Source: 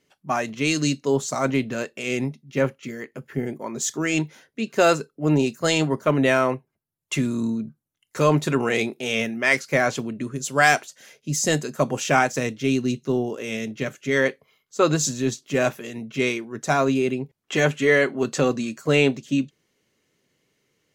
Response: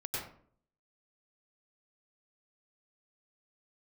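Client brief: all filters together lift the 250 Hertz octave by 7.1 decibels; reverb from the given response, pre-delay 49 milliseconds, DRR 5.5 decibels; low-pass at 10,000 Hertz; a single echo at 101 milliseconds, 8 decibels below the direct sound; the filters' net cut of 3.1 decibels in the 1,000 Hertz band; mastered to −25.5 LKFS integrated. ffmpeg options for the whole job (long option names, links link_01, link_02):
-filter_complex "[0:a]lowpass=10000,equalizer=frequency=250:width_type=o:gain=8.5,equalizer=frequency=1000:width_type=o:gain=-5.5,aecho=1:1:101:0.398,asplit=2[link_01][link_02];[1:a]atrim=start_sample=2205,adelay=49[link_03];[link_02][link_03]afir=irnorm=-1:irlink=0,volume=-8.5dB[link_04];[link_01][link_04]amix=inputs=2:normalize=0,volume=-7dB"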